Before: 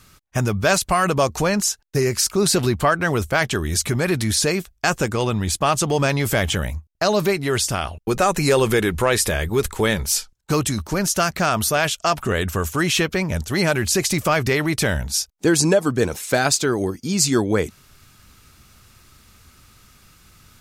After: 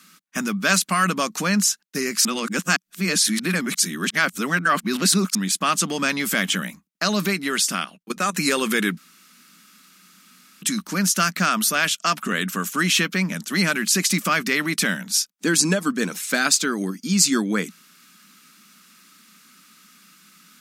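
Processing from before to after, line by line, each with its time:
0:02.25–0:05.35: reverse
0:07.84–0:08.37: output level in coarse steps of 18 dB
0:08.97–0:10.62: fill with room tone
whole clip: elliptic high-pass filter 180 Hz, stop band 40 dB; flat-topped bell 570 Hz −11.5 dB; level +2.5 dB

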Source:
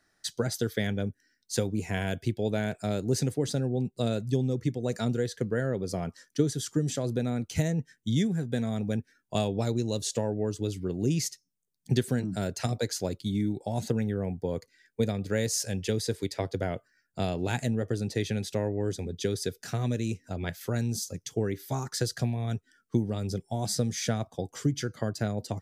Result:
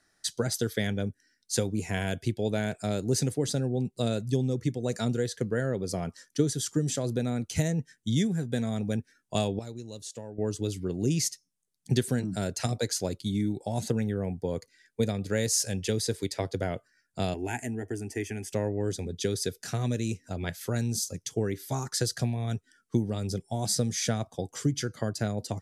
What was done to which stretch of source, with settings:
0:09.59–0:10.38: clip gain −12 dB
0:17.34–0:18.53: phaser with its sweep stopped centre 800 Hz, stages 8
whole clip: low-pass filter 12,000 Hz 24 dB per octave; high-shelf EQ 6,300 Hz +7 dB

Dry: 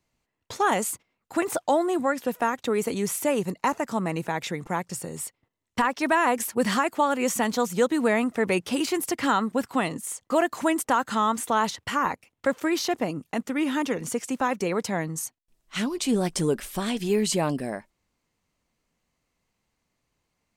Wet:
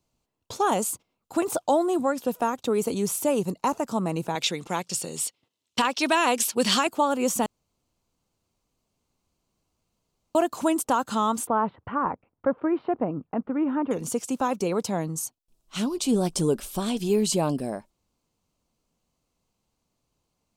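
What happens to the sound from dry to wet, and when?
0:04.35–0:06.87: meter weighting curve D
0:07.46–0:10.35: fill with room tone
0:11.47–0:13.91: inverse Chebyshev low-pass filter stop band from 6,000 Hz, stop band 60 dB
whole clip: parametric band 1,900 Hz −13 dB 0.65 octaves; level +1 dB

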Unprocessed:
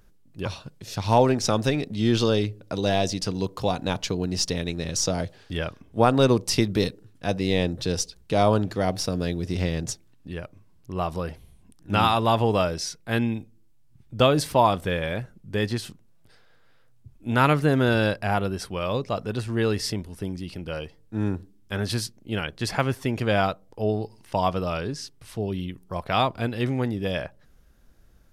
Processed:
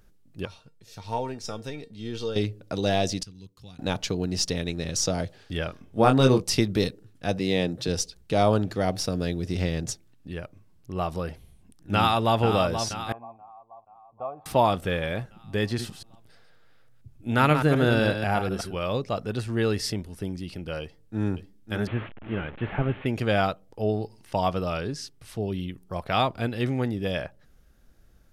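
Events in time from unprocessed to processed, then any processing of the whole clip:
0:00.45–0:02.36: tuned comb filter 460 Hz, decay 0.19 s, mix 80%
0:03.23–0:03.79: guitar amp tone stack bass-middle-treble 6-0-2
0:05.67–0:06.43: double-tracking delay 23 ms −4.5 dB
0:07.39–0:07.88: high-pass filter 110 Hz 24 dB per octave
0:11.94–0:12.40: delay throw 480 ms, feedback 60%, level −8 dB
0:13.12–0:14.46: formant resonators in series a
0:15.66–0:18.76: delay that plays each chunk backwards 123 ms, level −7.5 dB
0:20.81–0:21.32: delay throw 550 ms, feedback 45%, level −9.5 dB
0:21.87–0:23.06: linear delta modulator 16 kbit/s, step −35 dBFS
whole clip: notch filter 1,000 Hz, Q 13; level −1 dB

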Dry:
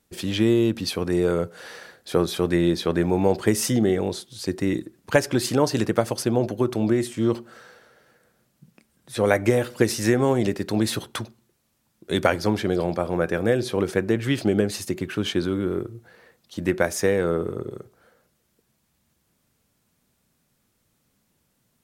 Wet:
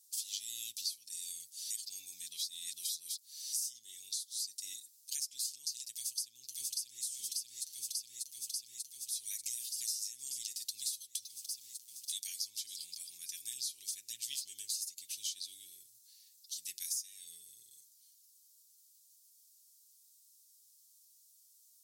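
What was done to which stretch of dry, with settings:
0:01.70–0:03.53: reverse
0:05.91–0:07.04: delay throw 590 ms, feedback 75%, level −2 dB
0:11.22–0:12.12: leveller curve on the samples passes 2
whole clip: inverse Chebyshev high-pass filter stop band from 1,500 Hz, stop band 60 dB; comb filter 7.5 ms, depth 61%; downward compressor 8 to 1, threshold −44 dBFS; level +8 dB

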